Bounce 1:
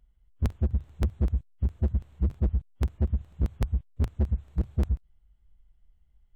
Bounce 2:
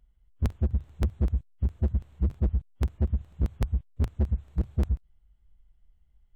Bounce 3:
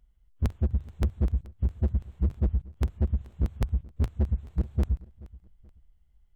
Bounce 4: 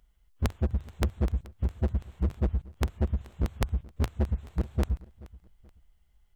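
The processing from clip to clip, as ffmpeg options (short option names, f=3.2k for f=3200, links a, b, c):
-af anull
-af "aecho=1:1:429|858:0.0891|0.0294"
-af "lowshelf=f=360:g=-10,volume=7.5dB"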